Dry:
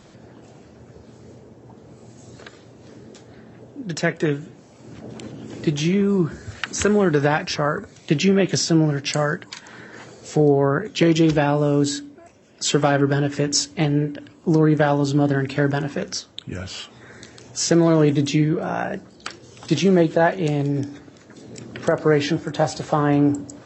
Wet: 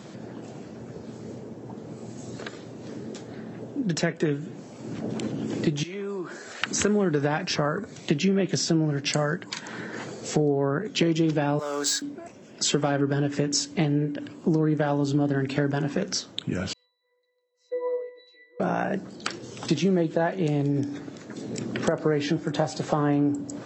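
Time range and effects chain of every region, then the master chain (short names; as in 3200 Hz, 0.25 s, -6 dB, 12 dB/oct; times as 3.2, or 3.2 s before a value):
5.83–6.62 HPF 510 Hz + compressor 3:1, threshold -38 dBFS
11.59–12.02 HPF 1300 Hz + bell 2800 Hz -12 dB 0.53 oct + sample leveller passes 2
16.73–18.6 brick-wall FIR high-pass 340 Hz + octave resonator B, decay 0.72 s + three-band expander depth 40%
whole clip: Chebyshev high-pass 170 Hz, order 2; low shelf 380 Hz +4.5 dB; compressor 3:1, threshold -28 dBFS; gain +4 dB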